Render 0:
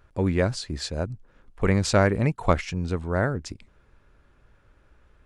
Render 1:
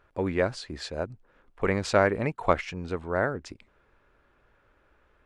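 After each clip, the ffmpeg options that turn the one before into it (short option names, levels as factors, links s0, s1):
-af "bass=f=250:g=-10,treble=f=4000:g=-9"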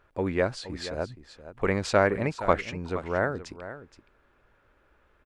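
-af "aecho=1:1:471:0.211"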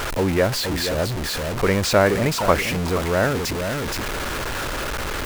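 -af "aeval=exprs='val(0)+0.5*0.0631*sgn(val(0))':c=same,volume=1.5"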